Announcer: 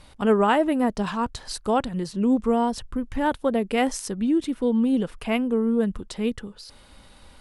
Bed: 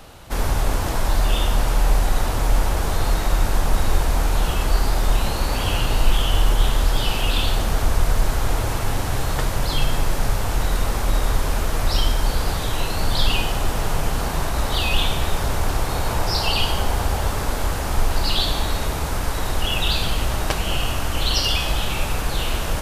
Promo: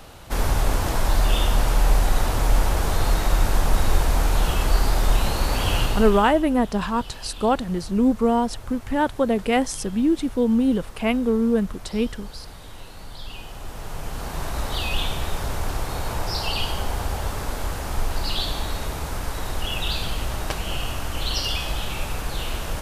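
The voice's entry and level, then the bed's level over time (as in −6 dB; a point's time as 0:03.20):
5.75 s, +2.0 dB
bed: 0:05.83 −0.5 dB
0:06.47 −18.5 dB
0:13.20 −18.5 dB
0:14.51 −5 dB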